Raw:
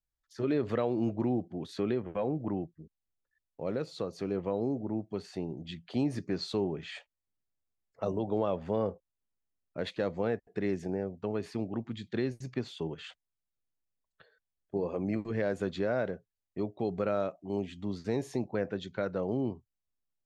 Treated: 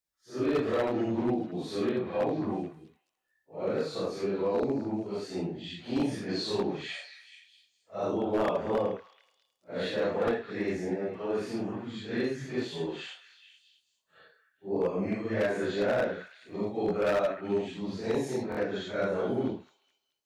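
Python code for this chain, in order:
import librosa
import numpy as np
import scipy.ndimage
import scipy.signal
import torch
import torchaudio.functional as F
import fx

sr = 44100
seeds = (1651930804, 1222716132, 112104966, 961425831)

y = fx.phase_scramble(x, sr, seeds[0], window_ms=200)
y = fx.highpass(y, sr, hz=250.0, slope=6)
y = 10.0 ** (-25.5 / 20.0) * (np.abs((y / 10.0 ** (-25.5 / 20.0) + 3.0) % 4.0 - 2.0) - 1.0)
y = fx.echo_stepped(y, sr, ms=215, hz=1700.0, octaves=0.7, feedback_pct=70, wet_db=-10.5)
y = fx.buffer_glitch(y, sr, at_s=(18.5,), block=1024, repeats=2)
y = F.gain(torch.from_numpy(y), 5.0).numpy()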